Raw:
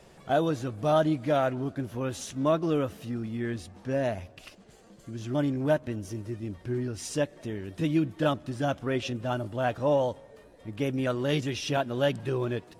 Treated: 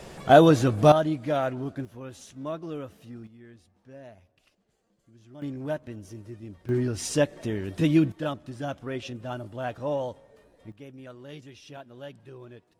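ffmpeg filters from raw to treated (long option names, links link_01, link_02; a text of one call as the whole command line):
ffmpeg -i in.wav -af "asetnsamples=nb_out_samples=441:pad=0,asendcmd='0.92 volume volume -1dB;1.85 volume volume -9dB;3.27 volume volume -18dB;5.42 volume volume -6dB;6.69 volume volume 5dB;8.12 volume volume -4.5dB;10.72 volume volume -16dB',volume=10.5dB" out.wav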